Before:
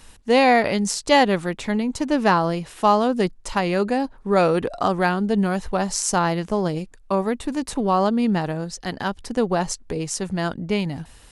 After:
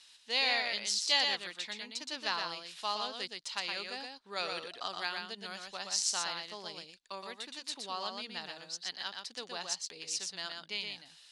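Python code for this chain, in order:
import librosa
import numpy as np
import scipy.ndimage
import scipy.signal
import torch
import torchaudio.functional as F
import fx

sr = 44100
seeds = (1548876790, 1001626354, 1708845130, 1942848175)

p1 = fx.bandpass_q(x, sr, hz=4100.0, q=2.2)
y = p1 + fx.echo_single(p1, sr, ms=120, db=-4.5, dry=0)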